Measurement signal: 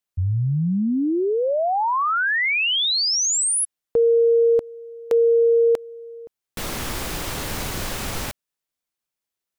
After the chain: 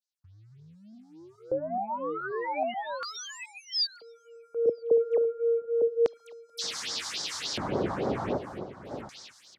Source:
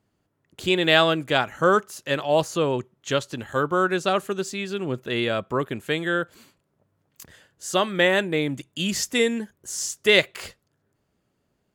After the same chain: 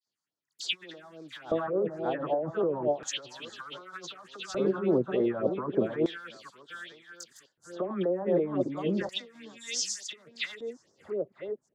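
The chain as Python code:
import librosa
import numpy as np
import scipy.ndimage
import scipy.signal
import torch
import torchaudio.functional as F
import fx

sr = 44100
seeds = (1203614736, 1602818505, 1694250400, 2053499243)

y = fx.reverse_delay(x, sr, ms=429, wet_db=-9.0)
y = scipy.signal.sosfilt(scipy.signal.butter(2, 59.0, 'highpass', fs=sr, output='sos'), y)
y = fx.env_lowpass_down(y, sr, base_hz=530.0, full_db=-14.5)
y = fx.low_shelf(y, sr, hz=130.0, db=-4.5)
y = fx.dispersion(y, sr, late='lows', ms=68.0, hz=2000.0)
y = fx.leveller(y, sr, passes=1)
y = y + 10.0 ** (-13.5 / 20.0) * np.pad(y, (int(958 * sr / 1000.0), 0))[:len(y)]
y = fx.over_compress(y, sr, threshold_db=-24.0, ratio=-1.0)
y = fx.phaser_stages(y, sr, stages=4, low_hz=410.0, high_hz=2700.0, hz=3.5, feedback_pct=20)
y = fx.filter_lfo_bandpass(y, sr, shape='square', hz=0.33, low_hz=520.0, high_hz=4900.0, q=1.3)
y = fx.low_shelf(y, sr, hz=390.0, db=6.0)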